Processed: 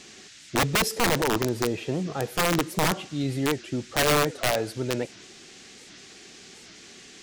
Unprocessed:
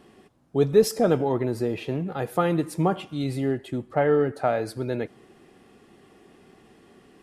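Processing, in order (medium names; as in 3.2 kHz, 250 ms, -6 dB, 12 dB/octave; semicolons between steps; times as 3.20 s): band noise 1.5–7.3 kHz -49 dBFS; integer overflow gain 16 dB; warped record 78 rpm, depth 250 cents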